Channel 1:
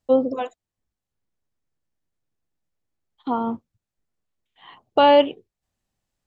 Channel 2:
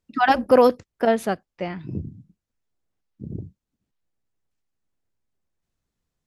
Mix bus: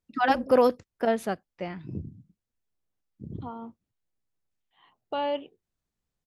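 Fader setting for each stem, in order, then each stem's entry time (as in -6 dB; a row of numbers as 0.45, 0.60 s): -15.0, -5.5 dB; 0.15, 0.00 s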